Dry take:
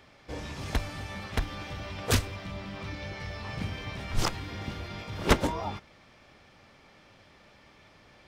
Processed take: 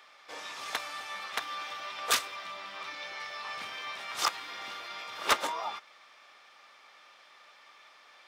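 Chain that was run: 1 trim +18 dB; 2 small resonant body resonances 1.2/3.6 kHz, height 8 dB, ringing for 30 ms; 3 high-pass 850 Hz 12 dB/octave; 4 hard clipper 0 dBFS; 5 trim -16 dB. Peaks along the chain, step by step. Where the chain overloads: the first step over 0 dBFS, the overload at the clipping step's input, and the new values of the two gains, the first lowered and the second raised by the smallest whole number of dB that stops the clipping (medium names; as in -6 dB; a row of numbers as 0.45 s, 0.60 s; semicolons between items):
+7.5 dBFS, +8.0 dBFS, +8.0 dBFS, 0.0 dBFS, -16.0 dBFS; step 1, 8.0 dB; step 1 +10 dB, step 5 -8 dB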